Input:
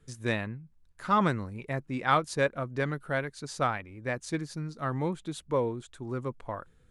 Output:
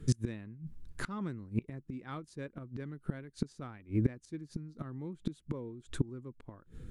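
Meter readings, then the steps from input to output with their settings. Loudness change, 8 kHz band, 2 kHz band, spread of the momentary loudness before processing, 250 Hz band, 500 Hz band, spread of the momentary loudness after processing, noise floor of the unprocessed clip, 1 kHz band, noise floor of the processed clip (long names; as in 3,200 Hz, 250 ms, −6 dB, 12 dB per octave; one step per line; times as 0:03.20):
−8.5 dB, −5.5 dB, −16.0 dB, 13 LU, −3.5 dB, −13.5 dB, 14 LU, −61 dBFS, −20.0 dB, −65 dBFS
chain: gate with flip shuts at −31 dBFS, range −27 dB
low shelf with overshoot 450 Hz +9 dB, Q 1.5
level +7 dB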